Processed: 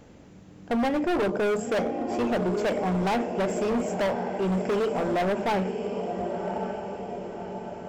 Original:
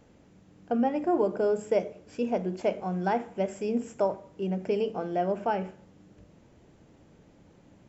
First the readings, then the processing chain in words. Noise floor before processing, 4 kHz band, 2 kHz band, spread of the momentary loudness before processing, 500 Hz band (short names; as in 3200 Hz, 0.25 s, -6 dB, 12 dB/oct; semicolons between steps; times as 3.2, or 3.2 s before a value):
-58 dBFS, +10.0 dB, +9.0 dB, 7 LU, +2.5 dB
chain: diffused feedback echo 1.117 s, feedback 53%, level -10 dB; hard clip -30 dBFS, distortion -6 dB; gain +7.5 dB